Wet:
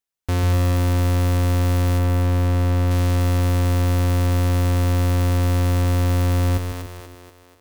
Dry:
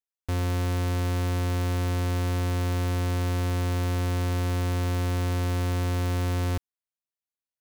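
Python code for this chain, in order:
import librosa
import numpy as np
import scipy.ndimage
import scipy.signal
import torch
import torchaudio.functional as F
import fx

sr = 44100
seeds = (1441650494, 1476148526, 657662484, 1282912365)

y = fx.high_shelf(x, sr, hz=3800.0, db=-8.0, at=(1.98, 2.91))
y = fx.echo_split(y, sr, split_hz=320.0, low_ms=143, high_ms=242, feedback_pct=52, wet_db=-5.0)
y = y * librosa.db_to_amplitude(6.5)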